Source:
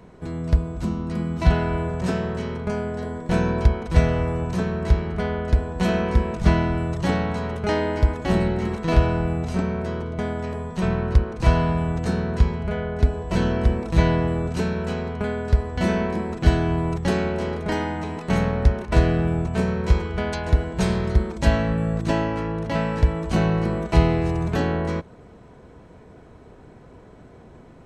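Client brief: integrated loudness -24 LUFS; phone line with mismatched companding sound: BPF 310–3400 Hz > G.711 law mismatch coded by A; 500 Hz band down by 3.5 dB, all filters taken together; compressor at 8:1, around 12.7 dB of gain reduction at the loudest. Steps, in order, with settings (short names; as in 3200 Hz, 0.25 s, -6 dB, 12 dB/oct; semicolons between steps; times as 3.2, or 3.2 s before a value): bell 500 Hz -3.5 dB; compressor 8:1, threshold -24 dBFS; BPF 310–3400 Hz; G.711 law mismatch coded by A; gain +13 dB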